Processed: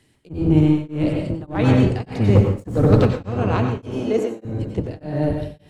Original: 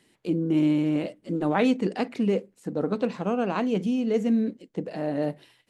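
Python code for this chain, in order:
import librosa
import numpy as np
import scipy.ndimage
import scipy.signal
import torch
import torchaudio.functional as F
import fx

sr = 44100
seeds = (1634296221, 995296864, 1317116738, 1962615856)

y = fx.octave_divider(x, sr, octaves=1, level_db=4.0)
y = fx.highpass(y, sr, hz=280.0, slope=24, at=(3.77, 4.45))
y = fx.transient(y, sr, attack_db=4, sustain_db=8)
y = fx.leveller(y, sr, passes=2, at=(2.35, 3.07))
y = fx.rev_plate(y, sr, seeds[0], rt60_s=0.84, hf_ratio=0.75, predelay_ms=80, drr_db=1.5)
y = y * np.abs(np.cos(np.pi * 1.7 * np.arange(len(y)) / sr))
y = F.gain(torch.from_numpy(y), 1.5).numpy()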